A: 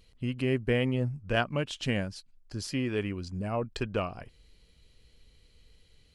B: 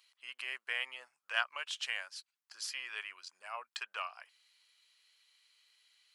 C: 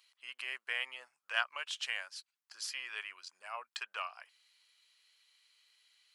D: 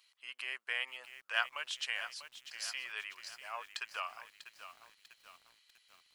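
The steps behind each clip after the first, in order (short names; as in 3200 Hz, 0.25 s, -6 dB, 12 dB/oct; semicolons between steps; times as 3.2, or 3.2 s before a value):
HPF 1000 Hz 24 dB/oct; gain -1 dB
nothing audible
lo-fi delay 0.645 s, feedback 55%, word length 9-bit, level -11 dB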